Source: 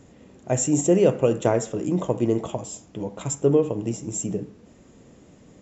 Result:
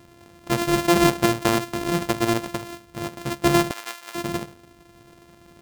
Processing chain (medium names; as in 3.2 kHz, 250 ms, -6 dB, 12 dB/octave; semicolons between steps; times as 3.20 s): sorted samples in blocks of 128 samples; 3.71–4.15 s: high-pass 1.1 kHz 12 dB/octave